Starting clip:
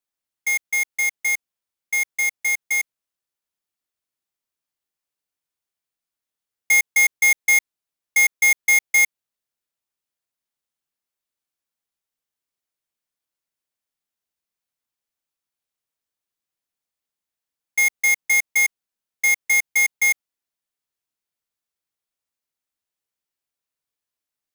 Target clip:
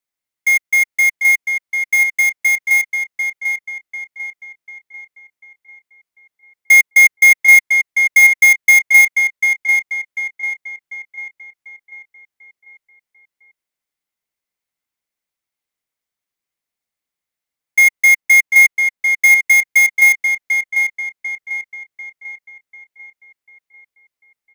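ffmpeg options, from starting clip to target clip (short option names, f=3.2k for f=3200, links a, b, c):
-filter_complex "[0:a]asettb=1/sr,asplit=3[a][b][c];[a]atrim=end=18.204[d];[b]atrim=start=18.2:end=19.37,asetpts=PTS-STARTPTS,afade=t=in:d=0.004:c=qsin,afade=t=out:st=1.166:d=0.004:c=qsin,aeval=exprs='0.168*(cos(1*acos(clip(val(0)/0.168,-1,1)))-cos(1*PI/2))+0.0119*(cos(3*acos(clip(val(0)/0.168,-1,1)))-cos(3*PI/2))':c=same[e];[c]atrim=start=19.366[f];[d][e]acrossfade=d=0.004:c1=hsin:c2=qsin[g];[g][f]acrossfade=d=0.004:c1=qsin:c2=hsin,equalizer=f=2.1k:w=7.4:g=8.5,asplit=2[h][i];[i]adelay=744,lowpass=f=3.3k:p=1,volume=-4.5dB,asplit=2[j][k];[k]adelay=744,lowpass=f=3.3k:p=1,volume=0.49,asplit=2[l][m];[m]adelay=744,lowpass=f=3.3k:p=1,volume=0.49,asplit=2[n][o];[o]adelay=744,lowpass=f=3.3k:p=1,volume=0.49,asplit=2[p][q];[q]adelay=744,lowpass=f=3.3k:p=1,volume=0.49,asplit=2[r][s];[s]adelay=744,lowpass=f=3.3k:p=1,volume=0.49[t];[j][l][n][p][r][t]amix=inputs=6:normalize=0[u];[h][u]amix=inputs=2:normalize=0,volume=1dB"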